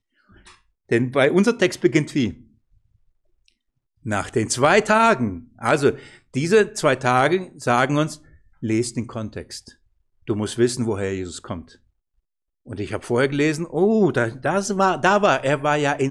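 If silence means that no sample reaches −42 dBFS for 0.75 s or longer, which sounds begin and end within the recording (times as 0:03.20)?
0:03.48–0:11.75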